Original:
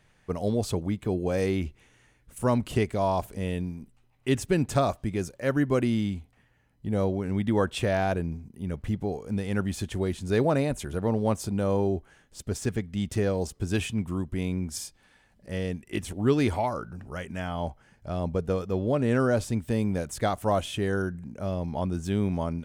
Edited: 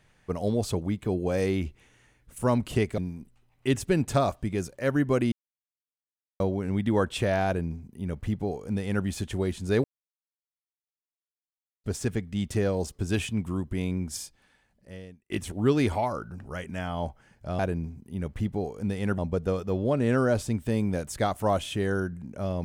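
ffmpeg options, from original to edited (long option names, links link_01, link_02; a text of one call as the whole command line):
ffmpeg -i in.wav -filter_complex "[0:a]asplit=9[link_01][link_02][link_03][link_04][link_05][link_06][link_07][link_08][link_09];[link_01]atrim=end=2.982[link_10];[link_02]atrim=start=3.588:end=5.93,asetpts=PTS-STARTPTS,afade=type=out:start_time=2.338:duration=0.004:curve=hsin[link_11];[link_03]atrim=start=5.93:end=7.01,asetpts=PTS-STARTPTS,volume=0[link_12];[link_04]atrim=start=7.01:end=10.45,asetpts=PTS-STARTPTS,afade=type=in:duration=0.004:curve=hsin,afade=type=out:start_time=3.436:duration=0.004:curve=hsin[link_13];[link_05]atrim=start=10.45:end=12.45,asetpts=PTS-STARTPTS,volume=0[link_14];[link_06]atrim=start=12.45:end=15.91,asetpts=PTS-STARTPTS,afade=type=in:duration=0.004:curve=hsin,afade=type=out:start_time=2.25:duration=1.21[link_15];[link_07]atrim=start=15.91:end=18.202,asetpts=PTS-STARTPTS,afade=type=in:duration=0.004:curve=hsin[link_16];[link_08]atrim=start=8.068:end=9.662[link_17];[link_09]atrim=start=18.198[link_18];[link_11][link_12][link_13][link_14][link_15][link_16]concat=n=6:v=0:a=1[link_19];[link_10][link_19]acrossfade=duration=0.004:curve1=hsin:curve2=hsin[link_20];[link_20][link_17]acrossfade=duration=0.004:curve1=hsin:curve2=hsin[link_21];[link_21][link_18]acrossfade=duration=0.004:curve1=hsin:curve2=hsin" out.wav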